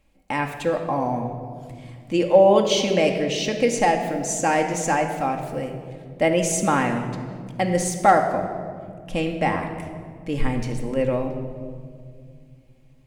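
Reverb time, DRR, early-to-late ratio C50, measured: 2.1 s, 3.0 dB, 7.0 dB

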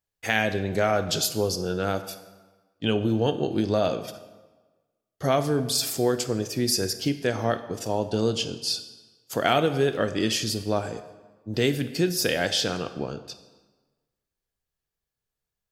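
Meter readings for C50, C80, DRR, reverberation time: 12.0 dB, 13.5 dB, 10.0 dB, 1.3 s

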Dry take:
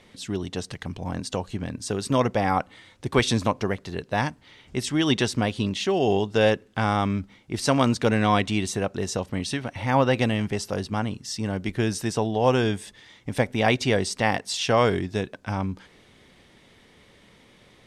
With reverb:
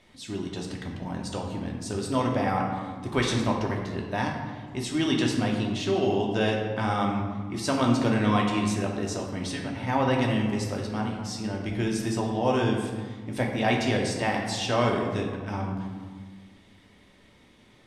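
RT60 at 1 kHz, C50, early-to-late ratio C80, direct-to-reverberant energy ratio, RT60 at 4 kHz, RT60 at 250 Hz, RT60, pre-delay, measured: 1.6 s, 3.5 dB, 5.0 dB, -1.0 dB, 0.90 s, 2.4 s, 1.6 s, 3 ms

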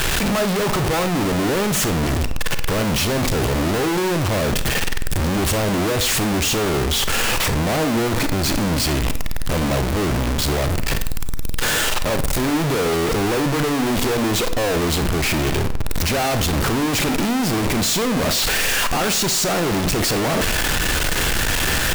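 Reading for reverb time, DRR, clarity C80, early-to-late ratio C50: 0.55 s, 9.5 dB, 15.5 dB, 12.0 dB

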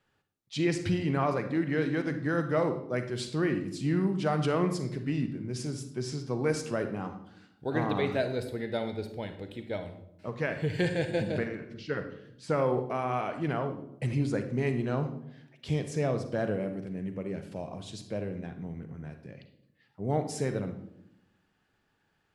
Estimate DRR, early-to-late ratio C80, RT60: 7.5 dB, 12.5 dB, 0.80 s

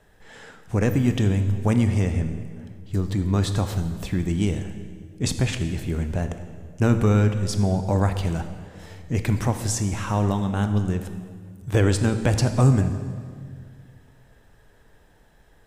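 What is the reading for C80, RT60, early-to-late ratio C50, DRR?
10.5 dB, 2.0 s, 9.0 dB, 8.0 dB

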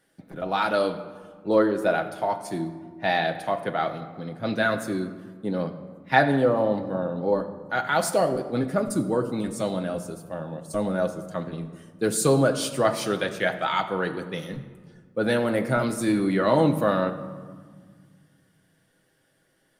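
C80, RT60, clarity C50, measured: 12.5 dB, 1.6 s, 11.5 dB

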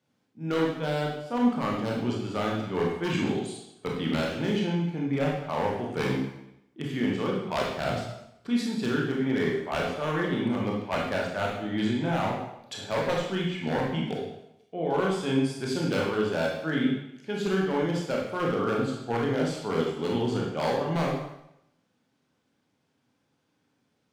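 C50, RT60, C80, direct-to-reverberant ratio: 1.5 dB, 0.80 s, 5.5 dB, -2.5 dB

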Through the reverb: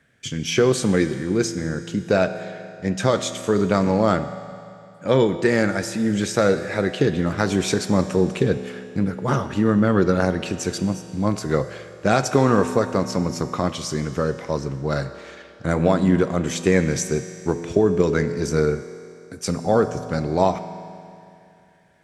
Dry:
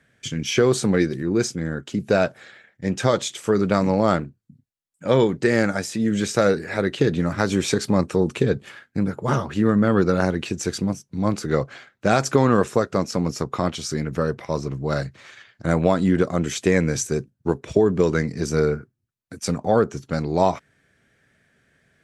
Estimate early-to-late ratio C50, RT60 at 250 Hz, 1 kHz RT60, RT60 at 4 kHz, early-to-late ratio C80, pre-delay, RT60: 11.0 dB, 2.6 s, 2.6 s, 2.6 s, 11.5 dB, 5 ms, 2.6 s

